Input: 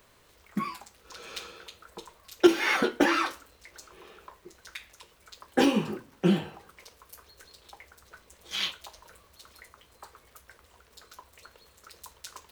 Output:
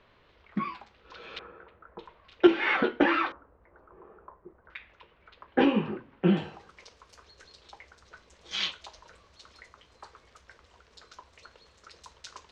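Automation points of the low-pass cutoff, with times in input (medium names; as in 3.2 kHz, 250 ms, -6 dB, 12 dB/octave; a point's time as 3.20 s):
low-pass 24 dB/octave
3.7 kHz
from 1.39 s 1.7 kHz
from 1.99 s 3.2 kHz
from 3.32 s 1.3 kHz
from 4.70 s 2.9 kHz
from 6.37 s 6.3 kHz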